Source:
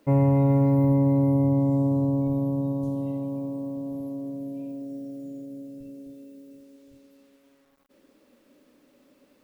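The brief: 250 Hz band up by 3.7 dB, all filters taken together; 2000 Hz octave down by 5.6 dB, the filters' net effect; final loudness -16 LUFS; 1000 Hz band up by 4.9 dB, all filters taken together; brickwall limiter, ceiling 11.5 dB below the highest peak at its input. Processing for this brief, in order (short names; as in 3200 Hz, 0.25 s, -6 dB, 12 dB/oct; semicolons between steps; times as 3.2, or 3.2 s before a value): bell 250 Hz +4 dB; bell 1000 Hz +7 dB; bell 2000 Hz -7.5 dB; gain +12.5 dB; limiter -8 dBFS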